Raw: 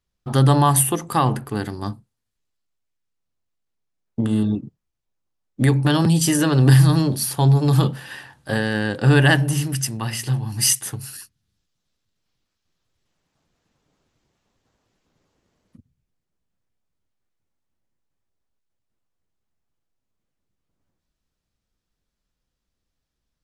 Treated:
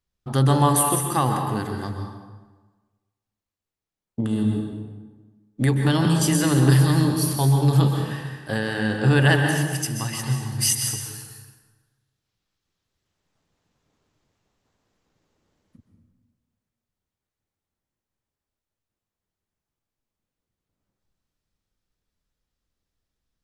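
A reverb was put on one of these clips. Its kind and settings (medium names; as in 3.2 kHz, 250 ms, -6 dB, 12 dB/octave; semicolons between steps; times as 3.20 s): plate-style reverb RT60 1.3 s, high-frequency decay 0.7×, pre-delay 115 ms, DRR 3 dB; trim -3.5 dB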